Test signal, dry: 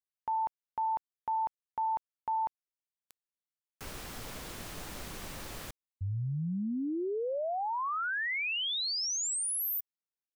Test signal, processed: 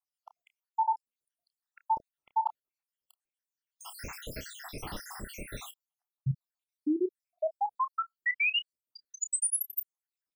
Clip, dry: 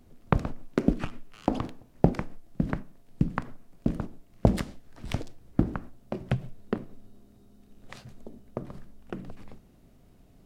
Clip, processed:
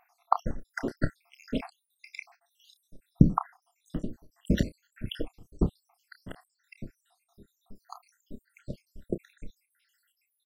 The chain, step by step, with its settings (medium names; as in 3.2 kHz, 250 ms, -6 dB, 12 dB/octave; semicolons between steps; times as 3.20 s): random holes in the spectrogram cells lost 82%; doubling 30 ms -12 dB; trim +7 dB